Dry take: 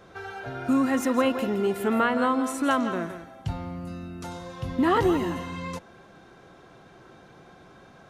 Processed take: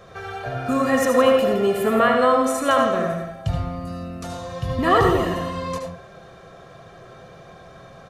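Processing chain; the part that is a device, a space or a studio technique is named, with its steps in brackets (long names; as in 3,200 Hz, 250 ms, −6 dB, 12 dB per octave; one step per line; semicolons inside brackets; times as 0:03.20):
microphone above a desk (comb filter 1.7 ms, depth 56%; convolution reverb RT60 0.35 s, pre-delay 69 ms, DRR 2.5 dB)
level +4 dB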